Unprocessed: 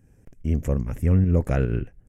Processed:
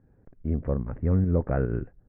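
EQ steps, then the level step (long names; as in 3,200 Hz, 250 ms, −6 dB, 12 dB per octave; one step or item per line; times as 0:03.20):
low-pass filter 1,500 Hz 24 dB per octave
low-shelf EQ 230 Hz −5.5 dB
0.0 dB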